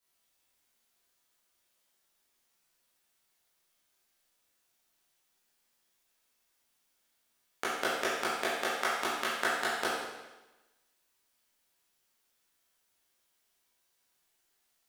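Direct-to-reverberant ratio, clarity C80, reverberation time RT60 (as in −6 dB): −9.0 dB, 2.0 dB, 1.1 s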